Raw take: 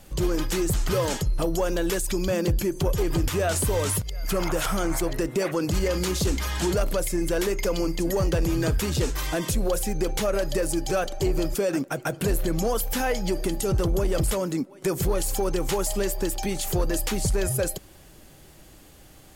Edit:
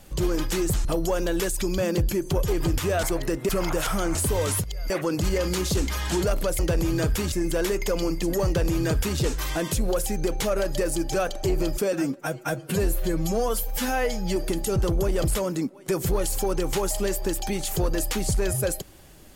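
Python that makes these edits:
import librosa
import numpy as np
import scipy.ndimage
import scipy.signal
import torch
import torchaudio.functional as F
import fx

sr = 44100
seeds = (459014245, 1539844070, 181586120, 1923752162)

y = fx.edit(x, sr, fx.cut(start_s=0.85, length_s=0.5),
    fx.swap(start_s=3.53, length_s=0.75, other_s=4.94, other_length_s=0.46),
    fx.duplicate(start_s=8.23, length_s=0.73, to_s=7.09),
    fx.stretch_span(start_s=11.7, length_s=1.62, factor=1.5), tone=tone)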